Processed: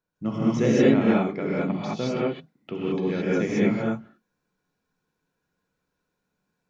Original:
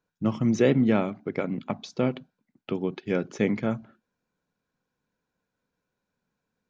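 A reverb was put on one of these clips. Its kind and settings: non-linear reverb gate 0.24 s rising, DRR -7.5 dB; gain -5 dB

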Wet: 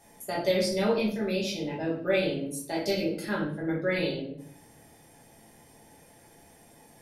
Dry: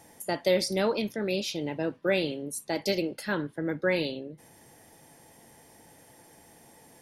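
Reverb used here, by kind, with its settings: shoebox room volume 78 m³, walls mixed, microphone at 1.3 m; gain -6.5 dB

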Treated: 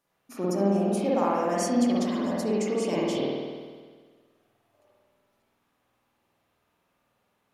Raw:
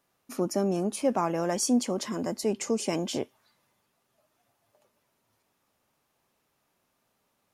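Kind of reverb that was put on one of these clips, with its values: spring tank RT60 1.6 s, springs 50 ms, chirp 25 ms, DRR -7 dB; gain -5 dB

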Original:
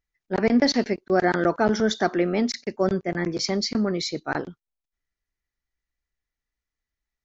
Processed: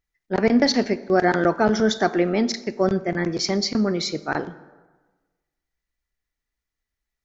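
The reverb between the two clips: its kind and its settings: plate-style reverb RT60 1.3 s, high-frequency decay 0.6×, DRR 14 dB; gain +2 dB

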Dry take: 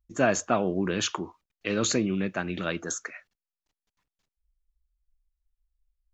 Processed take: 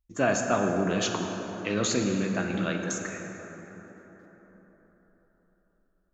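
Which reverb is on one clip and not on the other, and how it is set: plate-style reverb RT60 4.5 s, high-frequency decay 0.4×, DRR 2 dB; gain -2 dB

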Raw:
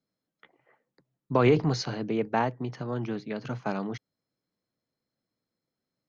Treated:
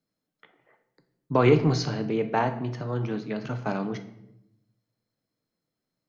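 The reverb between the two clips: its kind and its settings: shoebox room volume 220 m³, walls mixed, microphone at 0.45 m; gain +1 dB

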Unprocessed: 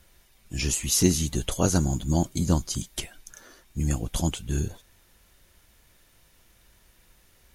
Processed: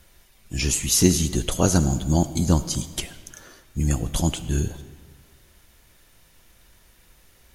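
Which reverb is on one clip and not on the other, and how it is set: digital reverb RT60 1.7 s, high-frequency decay 0.75×, pre-delay 25 ms, DRR 13.5 dB; gain +3.5 dB

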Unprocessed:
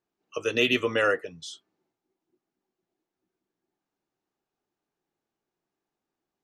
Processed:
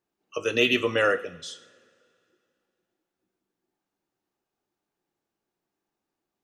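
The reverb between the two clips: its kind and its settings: two-slope reverb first 0.6 s, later 2.5 s, from -18 dB, DRR 11 dB; gain +1 dB

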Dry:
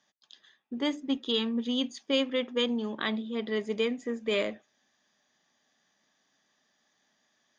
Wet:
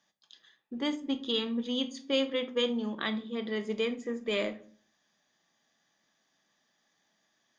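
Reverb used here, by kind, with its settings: shoebox room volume 410 m³, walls furnished, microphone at 0.73 m; gain -2 dB

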